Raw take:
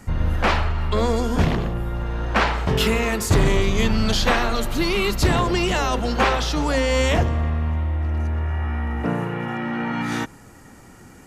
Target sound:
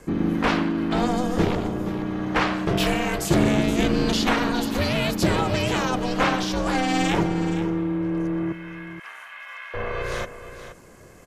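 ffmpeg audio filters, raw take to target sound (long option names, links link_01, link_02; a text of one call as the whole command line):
ffmpeg -i in.wav -filter_complex "[0:a]asettb=1/sr,asplit=3[link_01][link_02][link_03];[link_01]atrim=end=8.524[link_04];[link_02]atrim=start=8.52:end=9.74,asetpts=PTS-STARTPTS,afade=type=in:duration=0.004:curve=qsin,afade=type=out:start_time=1.216:duration=0.004:curve=qsin,highpass=frequency=1400:width=0.5412,highpass=frequency=1400:width=1.3066[link_05];[link_03]atrim=start=9.736[link_06];[link_04][link_05]acrossfade=duration=0.004:curve1=hsin:curve2=qsin[link_07];[link_07][link_06]acrossfade=duration=0.004:curve1=qsin:curve2=hsin,aeval=exprs='val(0)*sin(2*PI*250*n/s)':channel_layout=same,aecho=1:1:473:0.251" out.wav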